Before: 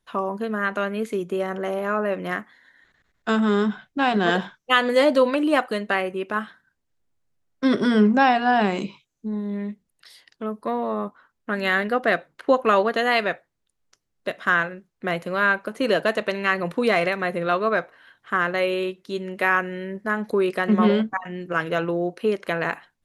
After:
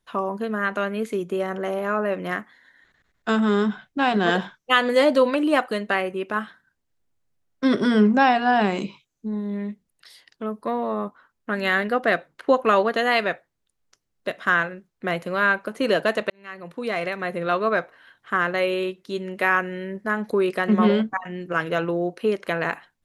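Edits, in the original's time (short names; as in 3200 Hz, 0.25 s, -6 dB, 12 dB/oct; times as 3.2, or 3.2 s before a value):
16.3–17.62 fade in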